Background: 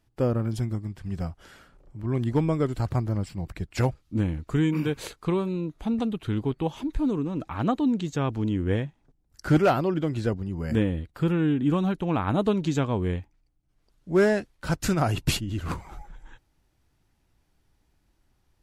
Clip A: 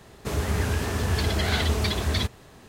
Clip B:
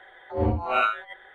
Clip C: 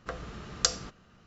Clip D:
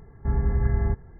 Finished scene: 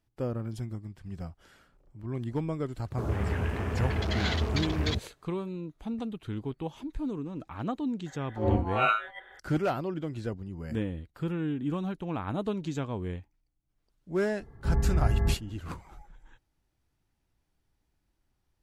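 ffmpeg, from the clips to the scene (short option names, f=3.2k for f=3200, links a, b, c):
-filter_complex "[0:a]volume=-8dB[a];[1:a]afwtdn=0.0224,atrim=end=2.68,asetpts=PTS-STARTPTS,volume=-4.5dB,afade=t=in:d=0.004:c=hsin,afade=t=out:st=2.676:d=0.004:c=hsin,adelay=2720[b];[2:a]atrim=end=1.34,asetpts=PTS-STARTPTS,volume=-2.5dB,afade=t=in:d=0.004:c=hsin,afade=t=out:st=1.336:d=0.004:c=hsin,adelay=8060[c];[4:a]atrim=end=1.19,asetpts=PTS-STARTPTS,volume=-2.5dB,afade=t=in:d=0.004:c=hsin,afade=t=out:st=1.186:d=0.004:c=hsin,adelay=14400[d];[a][b][c][d]amix=inputs=4:normalize=0"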